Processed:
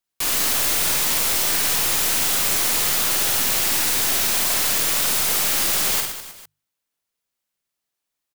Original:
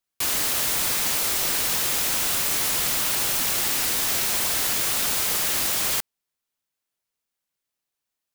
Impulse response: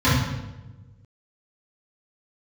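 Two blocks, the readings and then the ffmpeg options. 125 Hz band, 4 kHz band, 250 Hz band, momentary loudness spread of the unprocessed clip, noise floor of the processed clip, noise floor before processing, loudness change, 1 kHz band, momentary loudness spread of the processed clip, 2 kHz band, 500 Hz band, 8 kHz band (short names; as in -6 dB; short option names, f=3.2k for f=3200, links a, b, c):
+2.5 dB, +3.5 dB, +3.5 dB, 0 LU, -82 dBFS, -85 dBFS, +3.5 dB, +3.5 dB, 1 LU, +3.5 dB, +3.5 dB, +3.5 dB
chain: -filter_complex "[0:a]bandreject=f=50:t=h:w=6,bandreject=f=100:t=h:w=6,bandreject=f=150:t=h:w=6,asplit=2[a][b];[b]acrusher=bits=3:dc=4:mix=0:aa=0.000001,volume=-10.5dB[c];[a][c]amix=inputs=2:normalize=0,aecho=1:1:50|115|199.5|309.4|452.2:0.631|0.398|0.251|0.158|0.1"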